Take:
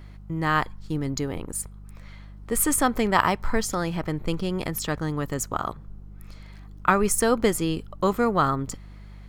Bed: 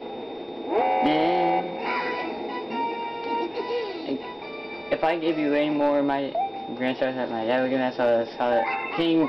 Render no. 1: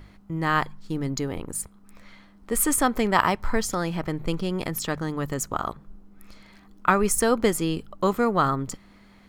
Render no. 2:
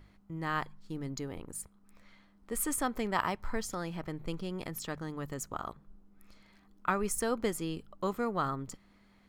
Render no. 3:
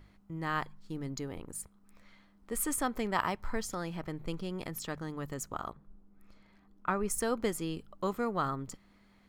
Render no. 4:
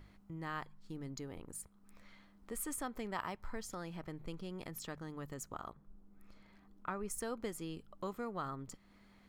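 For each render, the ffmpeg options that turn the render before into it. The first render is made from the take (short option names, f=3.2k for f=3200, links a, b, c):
-af "bandreject=f=50:t=h:w=4,bandreject=f=100:t=h:w=4,bandreject=f=150:t=h:w=4"
-af "volume=-10.5dB"
-filter_complex "[0:a]asettb=1/sr,asplit=3[a][b][c];[a]atrim=end=5.704[d];[b]atrim=start=5.7:end=7.1,asetpts=PTS-STARTPTS,afade=t=in:d=0.004:c=qsin,afade=t=out:st=1.396:d=0.004:c=qsin,highshelf=f=2.5k:g=-9[e];[c]atrim=start=7.096[f];[d][e]acrossfade=d=0.004:c1=hsin:c2=qsin[g];[g][f]acrossfade=d=0.004:c1=qsin:c2=hsin"
-af "acompressor=threshold=-53dB:ratio=1.5"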